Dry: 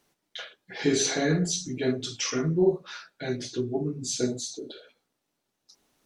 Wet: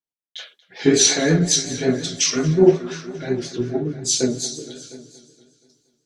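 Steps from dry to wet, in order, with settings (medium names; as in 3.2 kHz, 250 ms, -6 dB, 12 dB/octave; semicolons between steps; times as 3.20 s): multi-head delay 236 ms, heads all three, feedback 47%, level -16 dB; in parallel at +1 dB: compression, threshold -33 dBFS, peak gain reduction 15.5 dB; on the sum: vibrato 5.5 Hz 60 cents; three bands expanded up and down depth 100%; trim +2.5 dB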